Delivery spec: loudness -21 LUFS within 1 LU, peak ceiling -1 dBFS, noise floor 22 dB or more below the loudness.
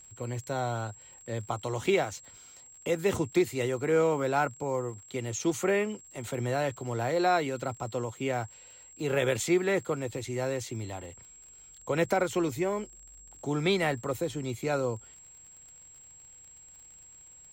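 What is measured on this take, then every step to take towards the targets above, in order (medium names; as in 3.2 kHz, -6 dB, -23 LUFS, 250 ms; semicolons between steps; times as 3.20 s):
tick rate 55 per s; steady tone 7.6 kHz; tone level -50 dBFS; loudness -30.5 LUFS; peak level -14.5 dBFS; loudness target -21.0 LUFS
-> de-click; band-stop 7.6 kHz, Q 30; trim +9.5 dB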